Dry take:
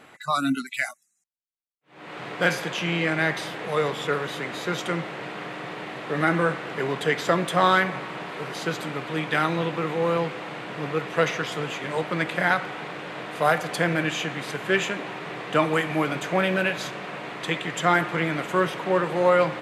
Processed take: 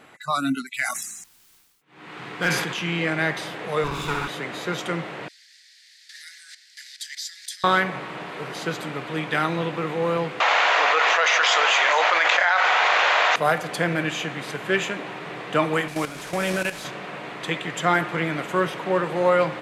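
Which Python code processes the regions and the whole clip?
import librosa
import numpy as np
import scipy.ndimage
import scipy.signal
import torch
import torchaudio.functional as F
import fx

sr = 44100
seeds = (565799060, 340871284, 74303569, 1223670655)

y = fx.chain(x, sr, fx.peak_eq(hz=590.0, db=-9.0, octaves=0.52),
    fx.clip_hard(threshold_db=-14.0),
    fx.sustainer(db_per_s=44.0), at=(0.74, 2.99))
y = fx.chain(y, sr, fx.lower_of_two(delay_ms=0.79),
    fx.room_flutter(wall_m=11.2, rt60_s=0.97), at=(3.84, 4.28))
y = fx.chain(y, sr, fx.high_shelf_res(hz=3600.0, db=10.5, q=3.0),
    fx.level_steps(step_db=16),
    fx.steep_highpass(hz=1700.0, slope=72), at=(5.28, 7.64))
y = fx.chain(y, sr, fx.highpass(hz=670.0, slope=24),
    fx.resample_bad(factor=3, down='none', up='filtered'),
    fx.env_flatten(amount_pct=100), at=(10.4, 13.36))
y = fx.chain(y, sr, fx.delta_mod(bps=64000, step_db=-24.5),
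    fx.level_steps(step_db=12), at=(15.88, 16.85))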